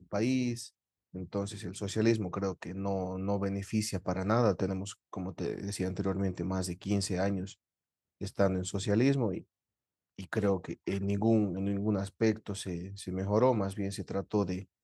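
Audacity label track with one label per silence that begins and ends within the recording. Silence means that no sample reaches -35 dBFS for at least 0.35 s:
0.660000	1.160000	silence
7.500000	8.210000	silence
9.380000	10.190000	silence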